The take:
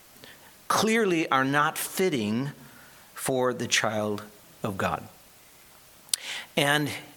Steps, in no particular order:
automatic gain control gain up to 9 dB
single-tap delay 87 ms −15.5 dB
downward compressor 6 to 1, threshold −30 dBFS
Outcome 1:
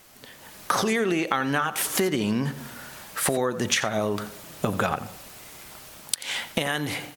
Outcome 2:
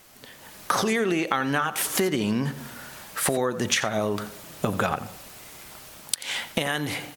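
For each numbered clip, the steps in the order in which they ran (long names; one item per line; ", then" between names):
downward compressor, then automatic gain control, then single-tap delay
downward compressor, then single-tap delay, then automatic gain control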